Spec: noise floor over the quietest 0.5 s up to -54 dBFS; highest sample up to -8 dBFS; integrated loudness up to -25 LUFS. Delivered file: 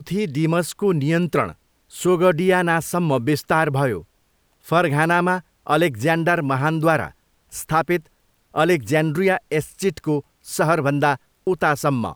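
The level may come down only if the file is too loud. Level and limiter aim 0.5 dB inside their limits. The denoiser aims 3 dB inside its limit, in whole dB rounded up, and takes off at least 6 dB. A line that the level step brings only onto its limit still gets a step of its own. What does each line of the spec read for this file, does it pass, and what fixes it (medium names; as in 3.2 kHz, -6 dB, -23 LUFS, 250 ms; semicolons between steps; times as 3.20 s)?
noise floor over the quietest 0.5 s -63 dBFS: pass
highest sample -5.5 dBFS: fail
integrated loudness -20.5 LUFS: fail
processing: trim -5 dB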